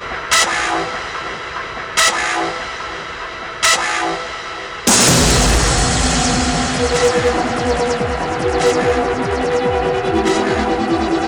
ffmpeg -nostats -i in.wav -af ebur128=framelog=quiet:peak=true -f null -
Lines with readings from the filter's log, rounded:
Integrated loudness:
  I:         -15.7 LUFS
  Threshold: -25.8 LUFS
Loudness range:
  LRA:         4.1 LU
  Threshold: -35.6 LUFS
  LRA low:   -17.6 LUFS
  LRA high:  -13.5 LUFS
True peak:
  Peak:       -1.2 dBFS